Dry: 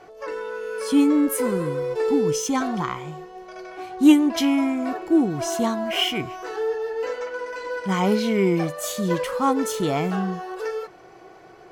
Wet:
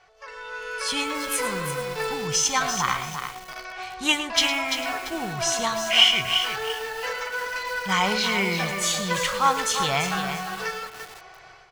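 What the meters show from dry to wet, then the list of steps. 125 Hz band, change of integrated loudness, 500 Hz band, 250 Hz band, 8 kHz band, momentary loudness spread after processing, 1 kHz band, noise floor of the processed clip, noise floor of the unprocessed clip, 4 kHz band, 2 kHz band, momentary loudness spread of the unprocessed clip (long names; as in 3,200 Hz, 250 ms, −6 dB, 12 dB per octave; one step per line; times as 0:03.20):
−4.5 dB, −0.5 dB, −6.5 dB, −13.5 dB, +6.5 dB, 14 LU, +2.5 dB, −47 dBFS, −47 dBFS, +9.0 dB, +7.5 dB, 14 LU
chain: guitar amp tone stack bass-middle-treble 10-0-10
automatic gain control gain up to 11 dB
high-frequency loss of the air 72 metres
single-tap delay 108 ms −12 dB
feedback echo at a low word length 341 ms, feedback 35%, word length 6 bits, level −6.5 dB
level +1.5 dB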